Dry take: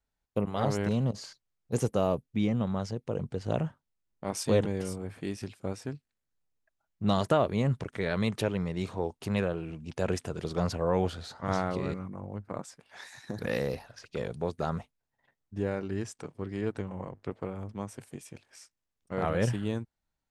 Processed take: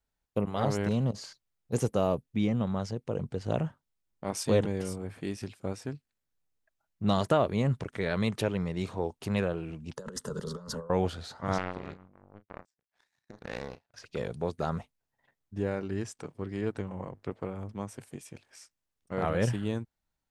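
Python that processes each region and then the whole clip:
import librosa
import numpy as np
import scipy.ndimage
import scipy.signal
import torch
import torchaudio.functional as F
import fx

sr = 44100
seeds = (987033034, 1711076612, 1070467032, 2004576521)

y = fx.chain(x, sr, fx.over_compress(threshold_db=-34.0, ratio=-0.5),
    fx.fixed_phaser(hz=480.0, stages=8), at=(9.96, 10.9))
y = fx.chain(y, sr, fx.lowpass(hz=6700.0, slope=12),
    fx.power_curve(exponent=2.0),
    fx.doubler(ms=33.0, db=-12), at=(11.58, 13.94))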